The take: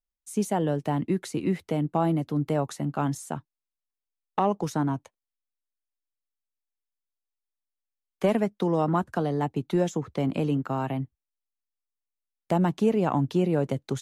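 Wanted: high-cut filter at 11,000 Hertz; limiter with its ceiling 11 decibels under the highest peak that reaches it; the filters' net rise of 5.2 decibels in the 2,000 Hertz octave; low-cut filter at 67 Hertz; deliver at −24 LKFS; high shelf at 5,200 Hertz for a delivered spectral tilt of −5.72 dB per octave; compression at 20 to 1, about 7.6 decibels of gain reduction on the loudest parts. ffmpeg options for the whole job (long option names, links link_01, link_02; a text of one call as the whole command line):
ffmpeg -i in.wav -af "highpass=67,lowpass=11000,equalizer=frequency=2000:width_type=o:gain=7.5,highshelf=frequency=5200:gain=-5,acompressor=threshold=-25dB:ratio=20,volume=10dB,alimiter=limit=-13.5dB:level=0:latency=1" out.wav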